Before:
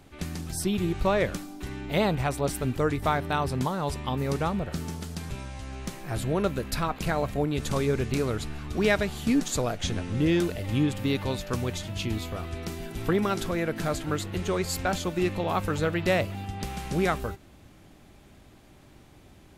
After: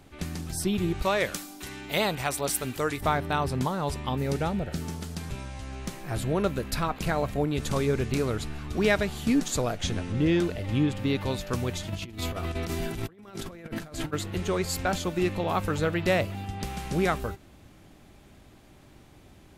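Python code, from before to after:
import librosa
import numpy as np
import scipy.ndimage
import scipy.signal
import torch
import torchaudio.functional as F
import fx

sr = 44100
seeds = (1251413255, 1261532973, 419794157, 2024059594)

y = fx.tilt_eq(x, sr, slope=2.5, at=(1.02, 3.01))
y = fx.peak_eq(y, sr, hz=1100.0, db=-12.0, octaves=0.23, at=(4.17, 4.82))
y = fx.high_shelf(y, sr, hz=8500.0, db=-11.0, at=(10.12, 11.21))
y = fx.over_compress(y, sr, threshold_db=-35.0, ratio=-0.5, at=(11.88, 14.12), fade=0.02)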